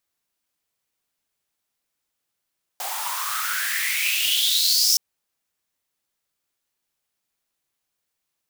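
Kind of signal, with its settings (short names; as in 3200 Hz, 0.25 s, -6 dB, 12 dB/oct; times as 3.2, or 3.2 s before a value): swept filtered noise white, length 2.17 s highpass, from 740 Hz, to 5600 Hz, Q 7.8, exponential, gain ramp +7.5 dB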